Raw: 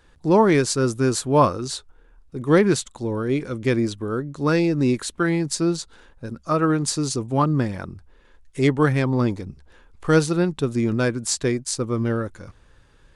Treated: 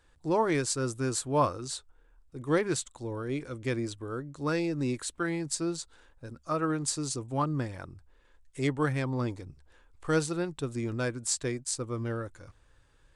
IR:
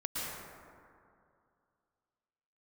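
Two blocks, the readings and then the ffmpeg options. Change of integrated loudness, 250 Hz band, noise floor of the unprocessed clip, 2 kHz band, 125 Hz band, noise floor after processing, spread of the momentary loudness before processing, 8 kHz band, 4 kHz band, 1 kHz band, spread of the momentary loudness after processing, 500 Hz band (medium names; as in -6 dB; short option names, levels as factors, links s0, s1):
-10.0 dB, -11.0 dB, -55 dBFS, -8.5 dB, -10.0 dB, -63 dBFS, 15 LU, -5.5 dB, -8.0 dB, -8.5 dB, 14 LU, -10.0 dB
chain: -af "equalizer=f=200:t=o:w=0.33:g=-12,equalizer=f=400:t=o:w=0.33:g=-3,equalizer=f=8000:t=o:w=0.33:g=6,volume=0.376"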